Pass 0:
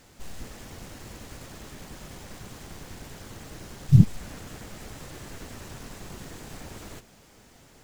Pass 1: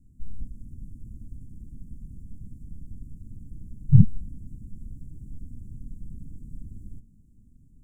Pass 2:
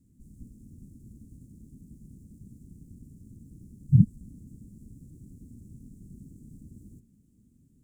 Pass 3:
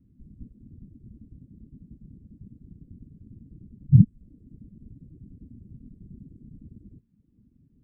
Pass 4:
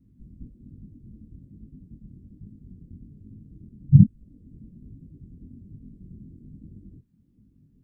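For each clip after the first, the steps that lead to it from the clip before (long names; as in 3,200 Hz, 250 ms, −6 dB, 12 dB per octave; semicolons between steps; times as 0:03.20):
elliptic band-stop filter 250–8,200 Hz, stop band 70 dB; spectral tilt −3.5 dB per octave; level −9 dB
high-pass filter 280 Hz 6 dB per octave; level +4 dB
reverb reduction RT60 0.82 s; high-frequency loss of the air 450 metres; level +4 dB
chorus effect 1.2 Hz, delay 19 ms, depth 4.7 ms; level +4.5 dB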